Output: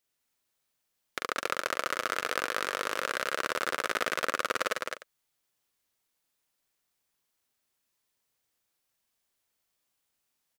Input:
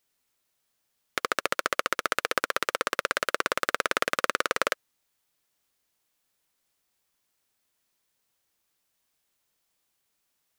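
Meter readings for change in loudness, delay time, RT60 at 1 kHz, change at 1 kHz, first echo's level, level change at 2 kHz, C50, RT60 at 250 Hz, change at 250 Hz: -3.0 dB, 43 ms, none, -3.0 dB, -4.0 dB, -3.5 dB, none, none, -3.5 dB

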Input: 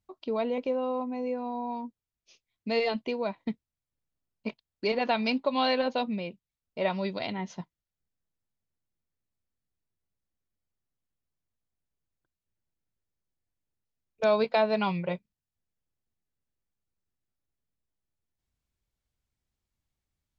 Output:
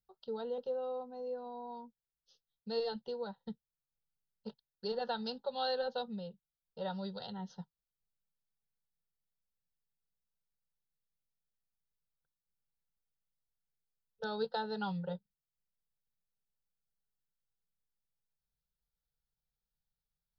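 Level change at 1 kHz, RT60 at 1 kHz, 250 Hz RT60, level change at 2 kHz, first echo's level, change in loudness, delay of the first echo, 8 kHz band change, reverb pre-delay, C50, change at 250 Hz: -9.5 dB, none, none, -13.5 dB, none, -10.0 dB, none, n/a, none, none, -11.5 dB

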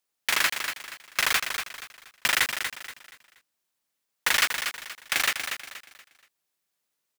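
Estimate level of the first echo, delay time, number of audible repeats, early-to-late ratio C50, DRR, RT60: -7.5 dB, 0.238 s, 3, none, none, none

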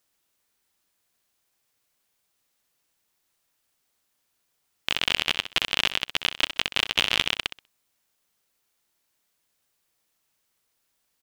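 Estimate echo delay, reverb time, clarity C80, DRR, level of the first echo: 64 ms, none, none, none, -12.0 dB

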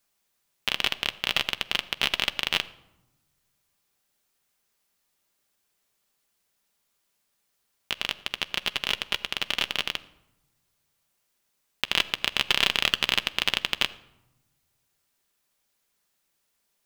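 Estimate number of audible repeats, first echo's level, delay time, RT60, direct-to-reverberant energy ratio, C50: none, none, none, 0.90 s, 10.5 dB, 18.0 dB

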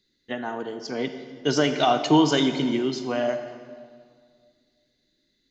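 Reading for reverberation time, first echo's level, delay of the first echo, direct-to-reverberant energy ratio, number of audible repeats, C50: 2.0 s, none, none, 8.5 dB, none, 9.0 dB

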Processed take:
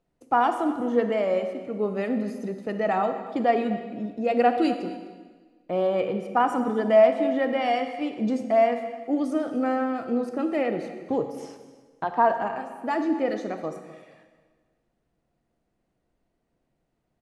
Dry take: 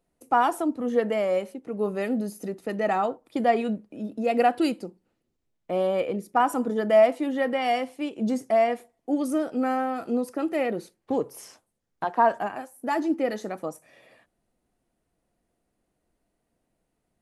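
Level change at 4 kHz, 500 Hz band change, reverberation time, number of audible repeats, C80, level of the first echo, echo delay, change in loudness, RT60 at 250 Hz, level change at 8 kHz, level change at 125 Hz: -1.0 dB, +1.0 dB, 1.4 s, 1, 9.5 dB, -18.0 dB, 0.255 s, +1.0 dB, 1.5 s, n/a, n/a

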